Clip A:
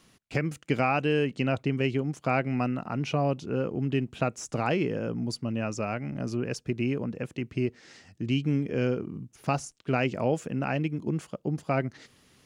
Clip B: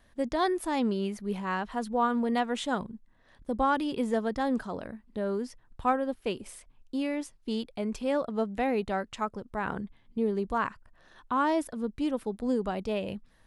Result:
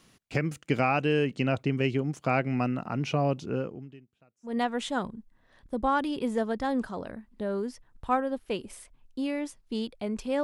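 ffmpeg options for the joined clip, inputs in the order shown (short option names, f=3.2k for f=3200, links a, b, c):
-filter_complex "[0:a]asettb=1/sr,asplit=3[a][b][c];[a]atrim=end=3.454[d];[b]atrim=start=3.45:end=4.57,asetpts=PTS-STARTPTS,afade=t=in:d=0.004:c=qsin,afade=t=out:st=1.116:d=0.004:c=qsin,aeval=exprs='val(0)*pow(10,-36*(0.5-0.5*cos(2*PI*0.57*n/s))/20)':c=same[e];[c]atrim=start=4.566[f];[d][e]acrossfade=d=0.004:c1=hsin:c2=qsin[g];[g][f]acrossfade=d=0.004:c1=qsin:c2=hsin,apad=whole_dur=10.43,atrim=end=10.43,atrim=end=4.57,asetpts=PTS-STARTPTS[h];[1:a]atrim=start=2.19:end=8.19,asetpts=PTS-STARTPTS[i];[h][i]acrossfade=d=0.14:c1=tri:c2=tri"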